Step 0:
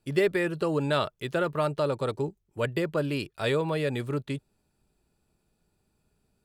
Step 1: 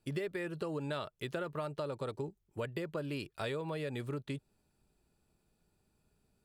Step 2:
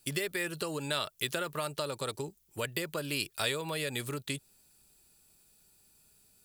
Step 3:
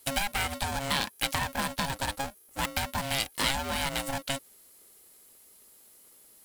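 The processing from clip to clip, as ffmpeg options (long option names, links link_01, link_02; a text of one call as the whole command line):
ffmpeg -i in.wav -af "acompressor=threshold=-33dB:ratio=5,volume=-2.5dB" out.wav
ffmpeg -i in.wav -af "crystalizer=i=8.5:c=0" out.wav
ffmpeg -i in.wav -af "aeval=exprs='val(0)+0.001*sin(2*PI*11000*n/s)':channel_layout=same,aeval=exprs='val(0)*sgn(sin(2*PI*410*n/s))':channel_layout=same,volume=4dB" out.wav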